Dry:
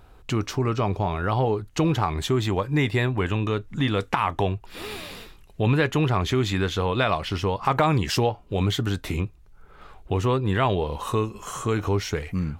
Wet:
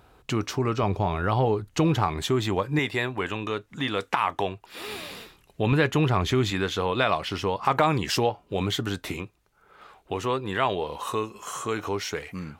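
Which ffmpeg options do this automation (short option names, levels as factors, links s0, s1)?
-af "asetnsamples=n=441:p=0,asendcmd='0.83 highpass f 46;2.08 highpass f 140;2.79 highpass f 430;4.88 highpass f 160;5.72 highpass f 56;6.5 highpass f 210;9.13 highpass f 450',highpass=f=130:p=1"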